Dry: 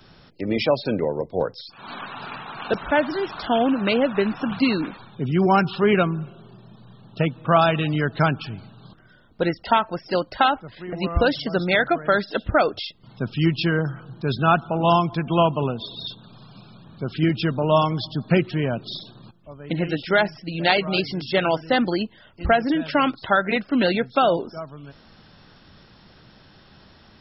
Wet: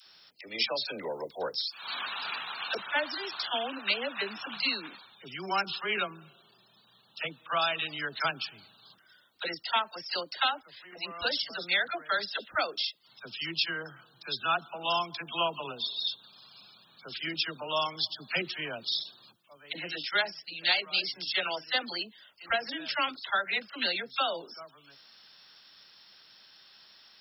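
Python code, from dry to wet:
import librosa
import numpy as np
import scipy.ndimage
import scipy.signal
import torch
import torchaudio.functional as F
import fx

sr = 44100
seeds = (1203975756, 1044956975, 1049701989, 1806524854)

p1 = np.diff(x, prepend=0.0)
p2 = fx.dispersion(p1, sr, late='lows', ms=55.0, hz=580.0)
p3 = fx.rider(p2, sr, range_db=10, speed_s=0.5)
y = p2 + F.gain(torch.from_numpy(p3), 1.0).numpy()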